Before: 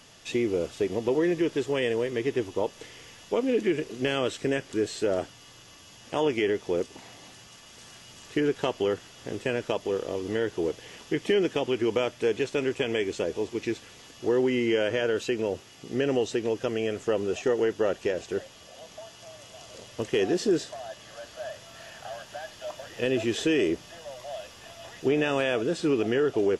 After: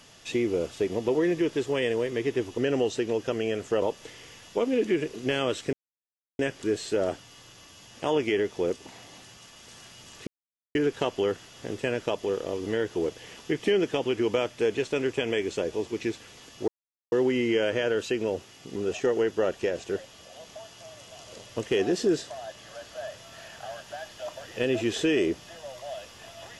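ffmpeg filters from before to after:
ffmpeg -i in.wav -filter_complex "[0:a]asplit=7[link_01][link_02][link_03][link_04][link_05][link_06][link_07];[link_01]atrim=end=2.582[link_08];[link_02]atrim=start=15.938:end=17.182[link_09];[link_03]atrim=start=2.578:end=4.49,asetpts=PTS-STARTPTS,afade=type=out:start_time=1.908:duration=0.004:curve=hsin,apad=pad_dur=0.66[link_10];[link_04]atrim=start=4.49:end=8.37,asetpts=PTS-STARTPTS,afade=type=in:duration=0.004:curve=hsin,afade=type=out:start_time=3.876:duration=0.004:curve=hsin,apad=pad_dur=0.48[link_11];[link_05]atrim=start=8.37:end=14.3,asetpts=PTS-STARTPTS,afade=type=in:duration=0.004:curve=hsin,afade=type=out:start_time=5.926:duration=0.004:curve=hsin,apad=pad_dur=0.44[link_12];[link_06]atrim=start=14.3:end=15.942,asetpts=PTS-STARTPTS,afade=type=in:duration=0.004:curve=hsin[link_13];[link_07]atrim=start=17.178[link_14];[link_08][link_09]acrossfade=duration=0.004:curve1=hsin:curve2=hsin[link_15];[link_10][link_11][link_12][link_13]concat=n=4:v=0:a=1[link_16];[link_15][link_16]acrossfade=duration=0.004:curve1=hsin:curve2=hsin[link_17];[link_17][link_14]acrossfade=duration=0.004:curve1=hsin:curve2=hsin" out.wav

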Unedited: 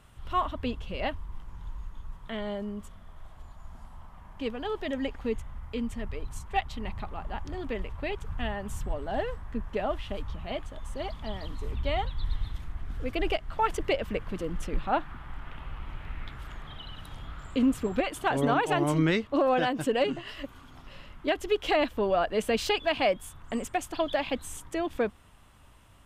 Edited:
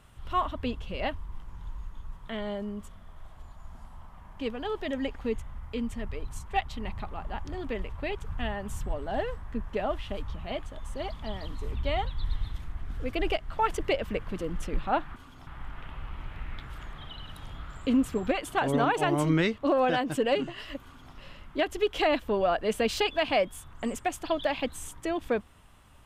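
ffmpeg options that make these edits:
ffmpeg -i in.wav -filter_complex "[0:a]asplit=3[link_01][link_02][link_03];[link_01]atrim=end=15.162[link_04];[link_02]atrim=start=20.518:end=20.832[link_05];[link_03]atrim=start=15.158[link_06];[link_04][link_05]acrossfade=duration=0.004:curve1=hsin:curve2=hsin[link_07];[link_07][link_06]acrossfade=duration=0.004:curve1=hsin:curve2=hsin" out.wav

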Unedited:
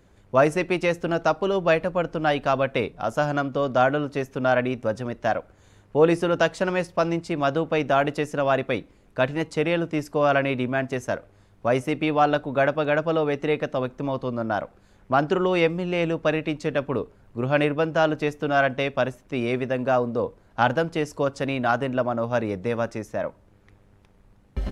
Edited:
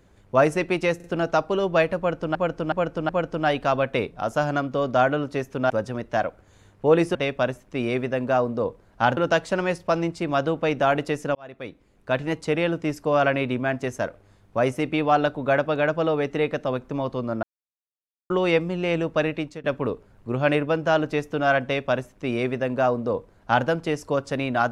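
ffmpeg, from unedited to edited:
ffmpeg -i in.wav -filter_complex "[0:a]asplit=13[link_01][link_02][link_03][link_04][link_05][link_06][link_07][link_08][link_09][link_10][link_11][link_12][link_13];[link_01]atrim=end=1.002[link_14];[link_02]atrim=start=0.958:end=1.002[link_15];[link_03]atrim=start=0.958:end=2.272[link_16];[link_04]atrim=start=1.898:end=2.272[link_17];[link_05]atrim=start=1.898:end=2.272[link_18];[link_06]atrim=start=1.898:end=4.512[link_19];[link_07]atrim=start=4.808:end=6.262[link_20];[link_08]atrim=start=18.728:end=20.752[link_21];[link_09]atrim=start=6.258:end=8.44,asetpts=PTS-STARTPTS,afade=type=out:start_time=2.178:duration=0.004:curve=hsin[link_22];[link_10]atrim=start=8.44:end=14.52,asetpts=PTS-STARTPTS,afade=type=in:duration=0.94,afade=type=out:start_time=6.076:duration=0.004:curve=hsin[link_23];[link_11]atrim=start=14.52:end=15.39,asetpts=PTS-STARTPTS,volume=0[link_24];[link_12]atrim=start=15.39:end=16.73,asetpts=PTS-STARTPTS,afade=type=in:duration=0.004:curve=hsin,afade=type=out:start_time=0.94:duration=0.4:curve=qsin:silence=0.0944061[link_25];[link_13]atrim=start=16.73,asetpts=PTS-STARTPTS,afade=type=in:duration=0.004:curve=hsin:silence=0.0944061[link_26];[link_14][link_15]acrossfade=duration=0.004:curve1=hsin:curve2=hsin[link_27];[link_27][link_16]acrossfade=duration=0.004:curve1=hsin:curve2=hsin[link_28];[link_28][link_17]acrossfade=duration=0.004:curve1=hsin:curve2=hsin[link_29];[link_29][link_18]acrossfade=duration=0.004:curve1=hsin:curve2=hsin[link_30];[link_30][link_19]acrossfade=duration=0.004:curve1=hsin:curve2=hsin[link_31];[link_31][link_20]acrossfade=duration=0.004:curve1=hsin:curve2=hsin[link_32];[link_32][link_21]acrossfade=duration=0.004:curve1=hsin:curve2=hsin[link_33];[link_22][link_23][link_24][link_25][link_26]concat=n=5:v=0:a=1[link_34];[link_33][link_34]acrossfade=duration=0.004:curve1=hsin:curve2=hsin" out.wav

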